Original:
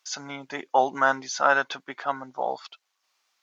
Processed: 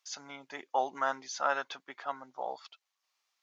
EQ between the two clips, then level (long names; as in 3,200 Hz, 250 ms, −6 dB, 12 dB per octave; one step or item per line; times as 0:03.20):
low-shelf EQ 91 Hz −8 dB
low-shelf EQ 320 Hz −6 dB
notch filter 1,500 Hz, Q 20
−8.0 dB